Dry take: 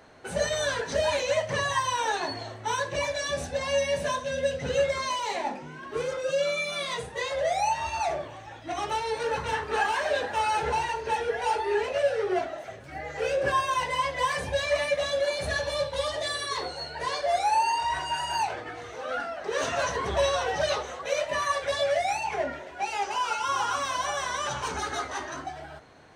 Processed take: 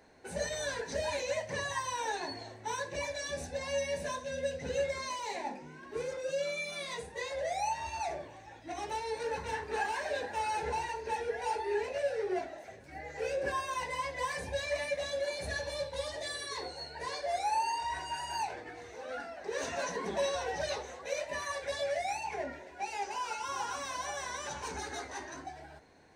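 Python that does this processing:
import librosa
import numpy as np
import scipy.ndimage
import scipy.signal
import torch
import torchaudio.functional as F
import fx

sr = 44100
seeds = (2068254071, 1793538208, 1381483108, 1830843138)

y = fx.low_shelf_res(x, sr, hz=140.0, db=-11.0, q=3.0, at=(19.77, 20.35))
y = fx.graphic_eq_31(y, sr, hz=(125, 630, 1250, 3150), db=(-10, -4, -12, -8))
y = y * librosa.db_to_amplitude(-5.5)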